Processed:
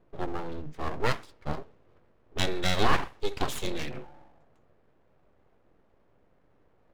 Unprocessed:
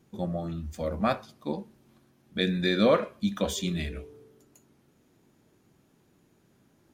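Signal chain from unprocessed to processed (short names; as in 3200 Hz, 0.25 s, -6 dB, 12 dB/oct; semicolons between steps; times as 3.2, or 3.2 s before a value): low-pass opened by the level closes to 1500 Hz, open at -22 dBFS; full-wave rectifier; gain +1.5 dB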